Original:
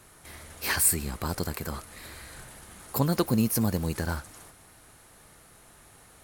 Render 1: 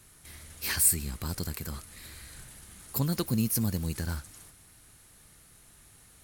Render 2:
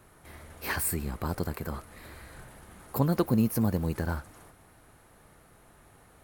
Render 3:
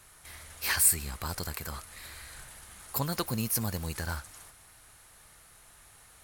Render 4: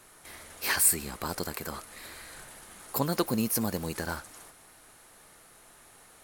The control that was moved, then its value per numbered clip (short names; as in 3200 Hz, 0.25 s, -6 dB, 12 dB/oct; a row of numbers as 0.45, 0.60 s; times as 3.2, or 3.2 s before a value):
bell, frequency: 720, 6800, 280, 75 Hz